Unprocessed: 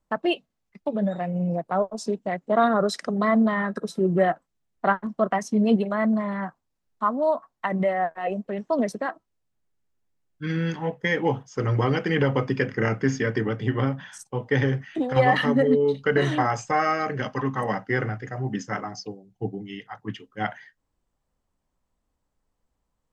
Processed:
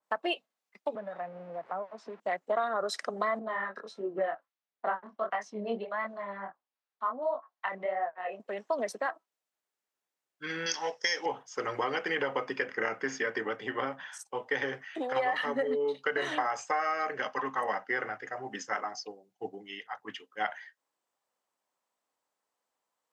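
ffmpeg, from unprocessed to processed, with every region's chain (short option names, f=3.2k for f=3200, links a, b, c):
-filter_complex "[0:a]asettb=1/sr,asplit=3[a][b][c];[a]atrim=end=0.954[d];[b]atrim=start=0.95:end=2.2,asetpts=PTS-STARTPTS,afade=t=in:d=0.004:c=qsin,afade=t=out:st=1.246:d=0.004:c=qsin,aeval=exprs='val(0)+0.5*0.00944*sgn(val(0))':c=same,lowpass=1.5k,acrossover=split=220|860[e][f][g];[e]acompressor=threshold=-34dB:ratio=4[h];[f]acompressor=threshold=-38dB:ratio=4[i];[g]acompressor=threshold=-39dB:ratio=4[j];[h][i][j]amix=inputs=3:normalize=0[k];[c]atrim=start=2.196[l];[d][k]acrossfade=d=0.004:c1=hsin:c2=qsin[m];[m][l]acrossfade=d=0.004:c1=qsin:c2=hsin,asettb=1/sr,asplit=3[n][o][p];[n]atrim=end=3.394[q];[o]atrim=start=3.39:end=8.4,asetpts=PTS-STARTPTS,afade=t=in:d=0.004:c=qsin,afade=t=out:st=5.006:d=0.004:c=qsin,lowpass=4.2k,flanger=delay=19:depth=7:speed=1.5,acrossover=split=850[r][s];[r]aeval=exprs='val(0)*(1-0.5/2+0.5/2*cos(2*PI*1.3*n/s))':c=same[t];[s]aeval=exprs='val(0)*(1-0.5/2-0.5/2*cos(2*PI*1.3*n/s))':c=same[u];[t][u]amix=inputs=2:normalize=0[v];[p]atrim=start=8.396[w];[q][v]acrossfade=d=0.004:c1=hsin:c2=qsin[x];[x][w]acrossfade=d=0.004:c1=qsin:c2=hsin,asettb=1/sr,asplit=3[y][z][aa];[y]atrim=end=10.664[ab];[z]atrim=start=10.66:end=11.26,asetpts=PTS-STARTPTS,afade=t=in:d=0.004:c=qsin,afade=t=out:st=0.596:d=0.004:c=qsin,lowpass=f=5.5k:t=q:w=13,bass=f=250:g=-8,treble=f=4k:g=15[ac];[aa]atrim=start=11.256[ad];[ab][ac]acrossfade=d=0.004:c1=hsin:c2=qsin[ae];[ae][ad]acrossfade=d=0.004:c1=qsin:c2=hsin,highpass=580,acompressor=threshold=-26dB:ratio=6,adynamicequalizer=threshold=0.00447:dfrequency=2800:dqfactor=0.7:tfrequency=2800:tqfactor=0.7:attack=5:release=100:ratio=0.375:range=2:mode=cutabove:tftype=highshelf"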